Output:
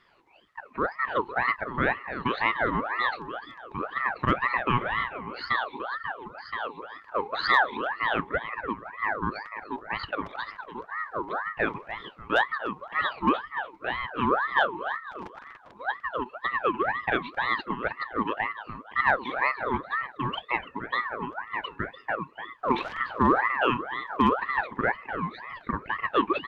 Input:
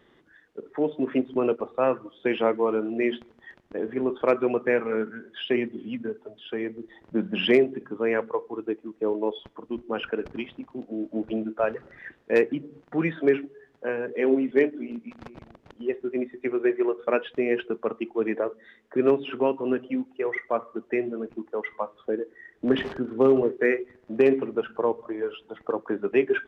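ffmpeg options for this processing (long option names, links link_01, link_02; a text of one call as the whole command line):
ffmpeg -i in.wav -filter_complex "[0:a]asplit=2[link_01][link_02];[link_02]adelay=295,lowpass=frequency=1700:poles=1,volume=-9.5dB,asplit=2[link_03][link_04];[link_04]adelay=295,lowpass=frequency=1700:poles=1,volume=0.4,asplit=2[link_05][link_06];[link_06]adelay=295,lowpass=frequency=1700:poles=1,volume=0.4,asplit=2[link_07][link_08];[link_08]adelay=295,lowpass=frequency=1700:poles=1,volume=0.4[link_09];[link_01][link_03][link_05][link_07][link_09]amix=inputs=5:normalize=0,aeval=exprs='val(0)*sin(2*PI*1100*n/s+1100*0.45/2*sin(2*PI*2*n/s))':channel_layout=same" out.wav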